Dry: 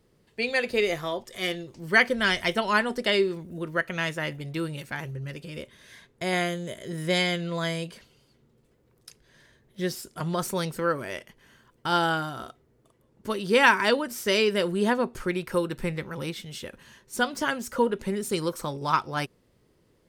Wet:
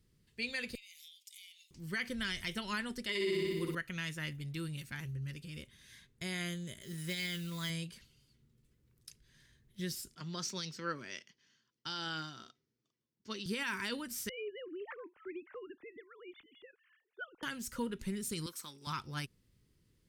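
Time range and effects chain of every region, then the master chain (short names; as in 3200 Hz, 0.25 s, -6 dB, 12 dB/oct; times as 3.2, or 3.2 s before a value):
0.75–1.71 steep high-pass 2200 Hz 72 dB/oct + compressor 8:1, threshold -46 dBFS + high shelf 7400 Hz +5.5 dB
3.09–3.75 high shelf 5500 Hz +11 dB + small resonant body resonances 400/1000/2000 Hz, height 12 dB, ringing for 20 ms + flutter echo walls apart 10.2 m, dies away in 1.1 s
6.81–7.7 bell 110 Hz -4.5 dB 2.7 oct + comb 5.1 ms, depth 31% + modulation noise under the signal 19 dB
10.15–13.46 HPF 210 Hz + resonant high shelf 7800 Hz -14 dB, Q 3 + three-band expander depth 40%
14.29–17.43 sine-wave speech + LPF 1900 Hz + compressor 2.5:1, threshold -27 dBFS
18.46–18.87 HPF 390 Hz + bell 550 Hz -8.5 dB 1.2 oct
whole clip: passive tone stack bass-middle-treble 6-0-2; limiter -36.5 dBFS; gain +10 dB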